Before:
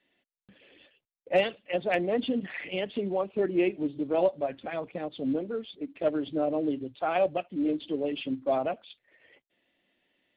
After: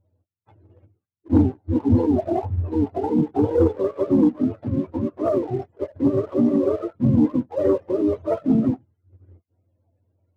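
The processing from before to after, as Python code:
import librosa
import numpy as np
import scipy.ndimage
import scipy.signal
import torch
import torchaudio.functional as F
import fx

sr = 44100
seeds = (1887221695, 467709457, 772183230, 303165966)

y = fx.octave_mirror(x, sr, pivot_hz=420.0)
y = fx.formant_shift(y, sr, semitones=-2)
y = fx.leveller(y, sr, passes=1)
y = F.gain(torch.from_numpy(y), 8.0).numpy()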